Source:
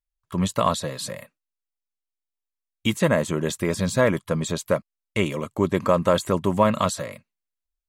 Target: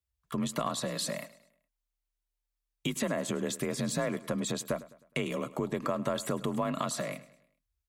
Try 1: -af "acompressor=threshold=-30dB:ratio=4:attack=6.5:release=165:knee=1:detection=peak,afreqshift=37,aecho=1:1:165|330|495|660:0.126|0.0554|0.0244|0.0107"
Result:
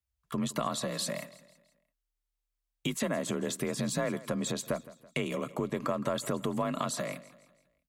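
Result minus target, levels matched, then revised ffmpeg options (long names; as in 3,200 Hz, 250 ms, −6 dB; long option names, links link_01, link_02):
echo 61 ms late
-af "acompressor=threshold=-30dB:ratio=4:attack=6.5:release=165:knee=1:detection=peak,afreqshift=37,aecho=1:1:104|208|312|416:0.126|0.0554|0.0244|0.0107"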